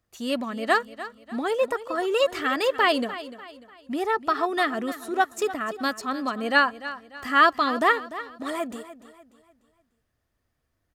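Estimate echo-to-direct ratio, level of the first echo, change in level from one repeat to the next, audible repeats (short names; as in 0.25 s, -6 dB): -14.0 dB, -14.5 dB, -8.0 dB, 3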